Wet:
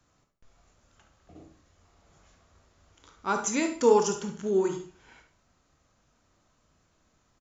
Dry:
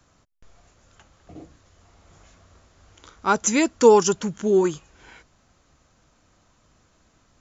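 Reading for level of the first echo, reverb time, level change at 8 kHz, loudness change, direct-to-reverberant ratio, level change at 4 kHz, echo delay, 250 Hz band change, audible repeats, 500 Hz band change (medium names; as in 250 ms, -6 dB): -11.5 dB, 0.50 s, no reading, -7.0 dB, 4.0 dB, -7.5 dB, 71 ms, -7.0 dB, 1, -6.5 dB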